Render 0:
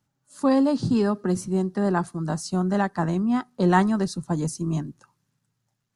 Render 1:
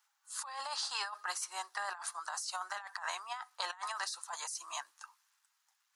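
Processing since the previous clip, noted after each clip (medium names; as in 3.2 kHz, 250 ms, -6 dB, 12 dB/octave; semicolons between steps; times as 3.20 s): steep high-pass 890 Hz 36 dB/octave; compressor with a negative ratio -41 dBFS, ratio -1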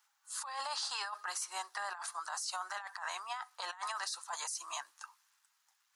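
peak limiter -30 dBFS, peak gain reduction 9.5 dB; trim +2 dB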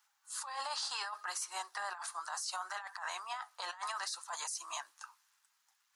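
flange 0.68 Hz, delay 0.6 ms, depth 8.3 ms, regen -75%; trim +4 dB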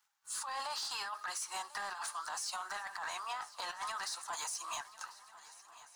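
compression 3:1, threshold -42 dBFS, peak gain reduction 6 dB; waveshaping leveller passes 2; shuffle delay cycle 1391 ms, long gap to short 3:1, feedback 45%, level -18 dB; trim -1.5 dB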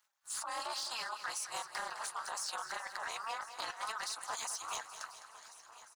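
reverb removal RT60 0.53 s; AM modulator 230 Hz, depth 95%; feedback delay 208 ms, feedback 59%, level -12 dB; trim +4.5 dB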